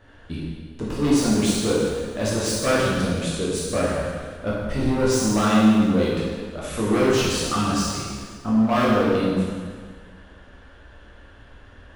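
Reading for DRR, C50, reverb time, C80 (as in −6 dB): −6.5 dB, −1.5 dB, 1.7 s, 0.5 dB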